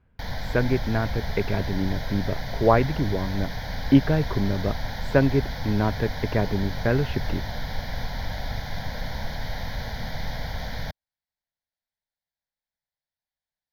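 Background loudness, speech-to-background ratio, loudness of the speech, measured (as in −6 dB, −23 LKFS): −33.0 LKFS, 7.5 dB, −25.5 LKFS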